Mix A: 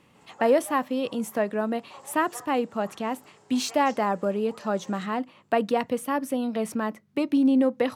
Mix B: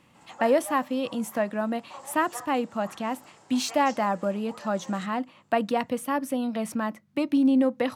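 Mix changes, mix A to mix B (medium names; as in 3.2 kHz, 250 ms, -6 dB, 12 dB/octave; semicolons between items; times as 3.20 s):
background +4.0 dB; master: add peaking EQ 420 Hz -11.5 dB 0.21 oct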